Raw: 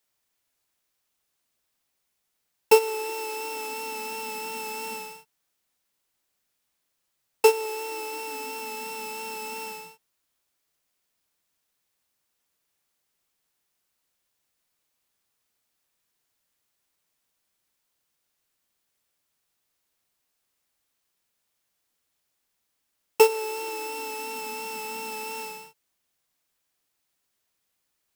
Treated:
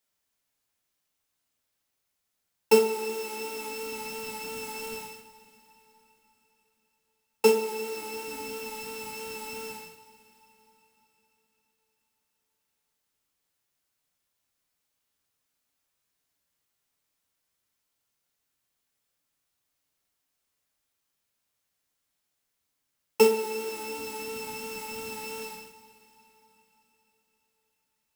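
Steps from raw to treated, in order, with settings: octaver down 1 oct, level -2 dB; two-slope reverb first 0.48 s, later 4.3 s, from -18 dB, DRR 2.5 dB; gain -4.5 dB

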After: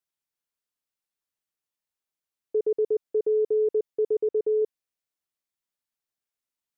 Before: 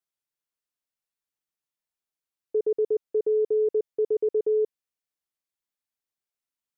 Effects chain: 4.18–4.62 air absorption 270 m

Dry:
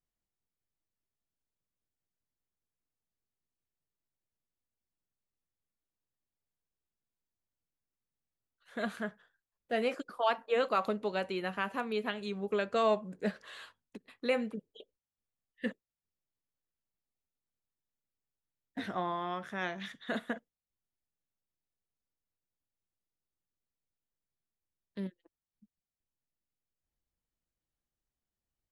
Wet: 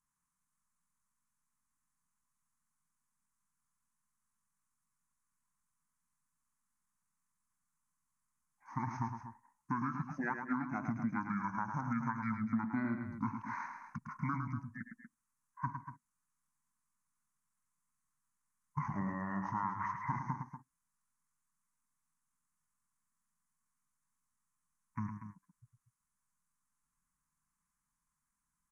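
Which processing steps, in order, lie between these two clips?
EQ curve 110 Hz 0 dB, 170 Hz -8 dB, 280 Hz +8 dB, 460 Hz +5 dB, 790 Hz -23 dB, 1200 Hz -12 dB, 1900 Hz +14 dB, 4100 Hz +1 dB, 6400 Hz -18 dB, 12000 Hz +8 dB; compressor 12:1, threshold -34 dBFS, peak gain reduction 14.5 dB; pitch shift -10.5 st; on a send: loudspeakers at several distances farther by 37 m -7 dB, 82 m -11 dB; on the sum: gain +1 dB

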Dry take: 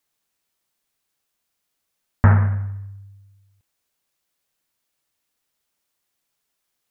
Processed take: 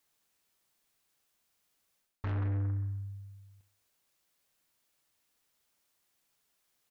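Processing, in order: reverse; compressor 8:1, threshold -23 dBFS, peak gain reduction 14.5 dB; reverse; soft clip -31.5 dBFS, distortion -8 dB; feedback echo 71 ms, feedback 48%, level -16.5 dB

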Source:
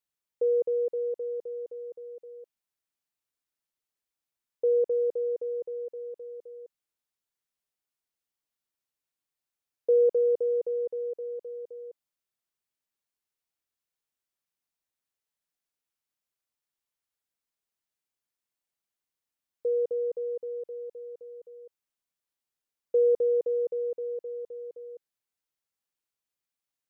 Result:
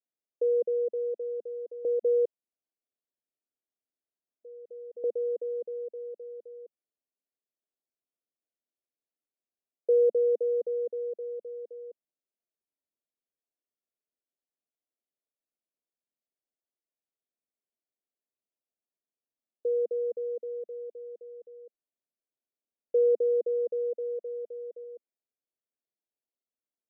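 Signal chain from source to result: Chebyshev band-pass 220–680 Hz, order 3; 1.85–5.04 reverse; 23.69–24.84 comb 1.7 ms, depth 31%

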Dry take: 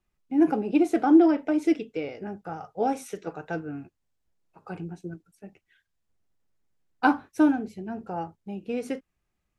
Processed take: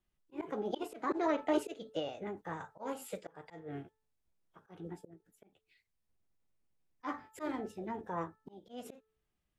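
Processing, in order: formant shift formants +4 st; de-hum 437.2 Hz, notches 4; auto swell 0.272 s; gain -5.5 dB

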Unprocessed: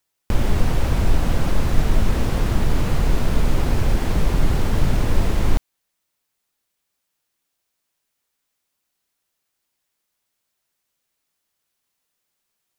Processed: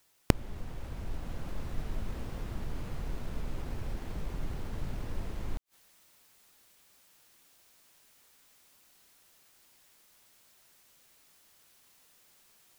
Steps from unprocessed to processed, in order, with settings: tracing distortion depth 0.35 ms; flipped gate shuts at -22 dBFS, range -32 dB; vocal rider within 4 dB 2 s; gain +9.5 dB

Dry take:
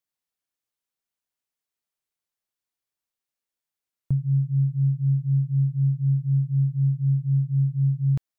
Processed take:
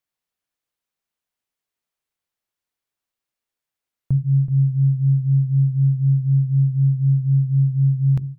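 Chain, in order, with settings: tone controls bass +1 dB, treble -4 dB; notches 50/100/150/200/250/300/350/400 Hz; echo 0.378 s -12 dB; gain +4 dB

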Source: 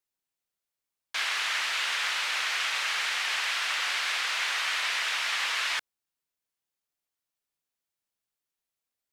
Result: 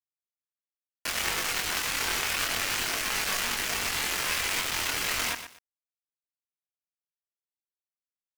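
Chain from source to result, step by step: Wiener smoothing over 9 samples; notch 3300 Hz, Q 5; limiter -25 dBFS, peak gain reduction 8 dB; bit-crush 5-bit; chorus voices 6, 0.23 Hz, delay 25 ms, depth 2.7 ms; speed mistake 44.1 kHz file played as 48 kHz; lo-fi delay 0.12 s, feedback 35%, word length 8-bit, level -9.5 dB; gain +8.5 dB

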